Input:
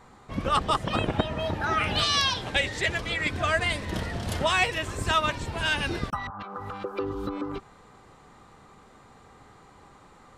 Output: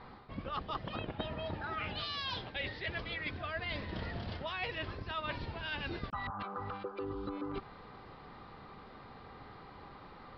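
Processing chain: reverse; compressor 6:1, threshold -38 dBFS, peak gain reduction 18.5 dB; reverse; downsampling 11025 Hz; gain +1 dB

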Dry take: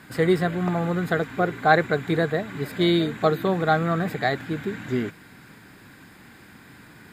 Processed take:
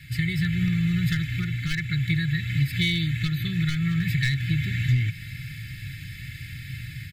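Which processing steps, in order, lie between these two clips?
AGC gain up to 7 dB; ten-band EQ 125 Hz +11 dB, 250 Hz -4 dB, 500 Hz -8 dB, 1000 Hz +4 dB, 2000 Hz +4 dB, 4000 Hz +3 dB, 8000 Hz -5 dB; overloaded stage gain 9 dB; low shelf 82 Hz +9 dB; comb 2.3 ms, depth 92%; compressor, threshold -17 dBFS, peak gain reduction 9.5 dB; elliptic band-stop 230–2100 Hz, stop band 60 dB

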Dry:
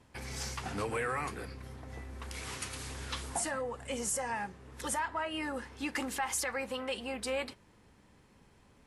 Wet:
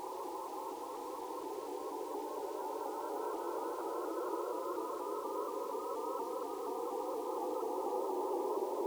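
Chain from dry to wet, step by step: steep low-pass 1500 Hz 96 dB/oct; spectral gate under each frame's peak -15 dB strong; elliptic high-pass 360 Hz, stop band 50 dB; in parallel at 0 dB: upward compressor, threshold -39 dBFS; on the sum: Paulstretch 41×, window 0.10 s, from 7.64; requantised 12-bit, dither none; reverb RT60 0.35 s, pre-delay 54 ms, DRR 10 dB; shaped vibrato saw up 4.2 Hz, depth 100 cents; gain +18 dB

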